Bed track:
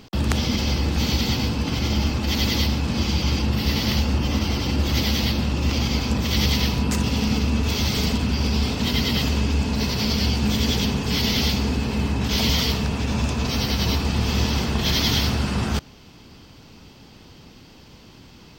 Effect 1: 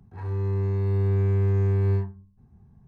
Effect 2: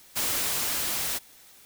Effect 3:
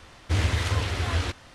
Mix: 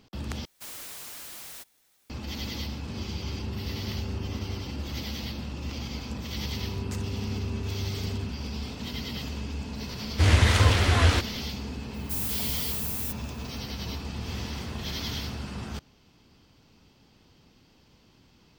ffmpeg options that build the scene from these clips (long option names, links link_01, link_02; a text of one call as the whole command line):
ffmpeg -i bed.wav -i cue0.wav -i cue1.wav -i cue2.wav -filter_complex "[2:a]asplit=2[link_01][link_02];[1:a]asplit=2[link_03][link_04];[3:a]asplit=2[link_05][link_06];[0:a]volume=-13dB[link_07];[link_04]alimiter=limit=-19dB:level=0:latency=1:release=71[link_08];[link_05]dynaudnorm=framelen=150:gausssize=5:maxgain=6dB[link_09];[link_02]aemphasis=mode=production:type=50kf[link_10];[link_06]aeval=exprs='val(0)*gte(abs(val(0)),0.02)':channel_layout=same[link_11];[link_07]asplit=2[link_12][link_13];[link_12]atrim=end=0.454[link_14];[link_01]atrim=end=1.65,asetpts=PTS-STARTPTS,volume=-13.5dB[link_15];[link_13]atrim=start=2.096[link_16];[link_03]atrim=end=2.87,asetpts=PTS-STARTPTS,volume=-16dB,afade=type=in:duration=0.004:curve=hsin,afade=type=out:start_time=2.866:duration=0.004:curve=hsin,adelay=2610[link_17];[link_08]atrim=end=2.87,asetpts=PTS-STARTPTS,volume=-10.5dB,afade=type=in:duration=0.004:curve=hsin,afade=type=out:start_time=2.866:duration=0.004:curve=hsin,adelay=6250[link_18];[link_09]atrim=end=1.54,asetpts=PTS-STARTPTS,afade=type=in:duration=0.004:curve=hsin,afade=type=out:start_time=1.536:duration=0.004:curve=hsin,adelay=9890[link_19];[link_10]atrim=end=1.65,asetpts=PTS-STARTPTS,volume=-16.5dB,afade=type=in:duration=0.004:curve=hsin,afade=type=out:start_time=1.646:duration=0.004:curve=hsin,adelay=11940[link_20];[link_11]atrim=end=1.54,asetpts=PTS-STARTPTS,volume=-18dB,afade=type=in:duration=0.004:curve=hsin,afade=type=out:start_time=1.536:duration=0.004:curve=hsin,adelay=13950[link_21];[link_14][link_15]acrossfade=duration=0.004:curve1=hsin:curve2=hsin[link_22];[link_22][link_16]acrossfade=duration=0.004:curve1=hsin:curve2=hsin[link_23];[link_23][link_17][link_18][link_19][link_20][link_21]amix=inputs=6:normalize=0" out.wav